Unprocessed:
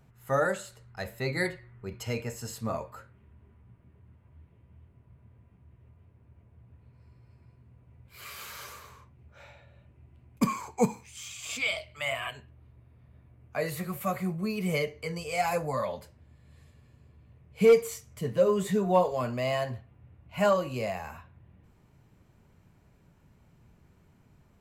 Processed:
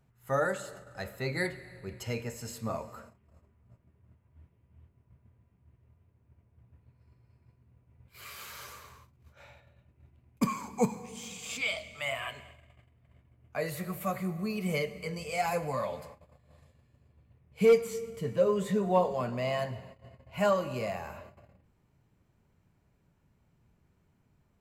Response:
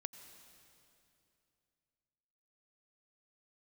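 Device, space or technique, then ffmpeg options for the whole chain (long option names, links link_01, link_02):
keyed gated reverb: -filter_complex "[0:a]asettb=1/sr,asplit=3[link_01][link_02][link_03];[link_01]atrim=end=17.784[link_04];[link_02]atrim=start=17.78:end=19.59,asetpts=PTS-STARTPTS,afade=type=in:duration=0.004:curve=qsin,afade=type=out:start_time=1.806:duration=0.004:curve=qsin,highshelf=frequency=7500:gain=-6[link_05];[link_03]atrim=start=19.586[link_06];[link_04][link_05]acrossfade=duration=0.004:curve1=hsin:curve2=qsin[link_07];[link_07][link_06]acrossfade=duration=0.004:curve1=qsin:curve2=hsin,asplit=3[link_08][link_09][link_10];[1:a]atrim=start_sample=2205[link_11];[link_09][link_11]afir=irnorm=-1:irlink=0[link_12];[link_10]apad=whole_len=1085057[link_13];[link_12][link_13]sidechaingate=range=-33dB:threshold=-53dB:ratio=16:detection=peak,volume=4dB[link_14];[link_08][link_14]amix=inputs=2:normalize=0,volume=-8.5dB"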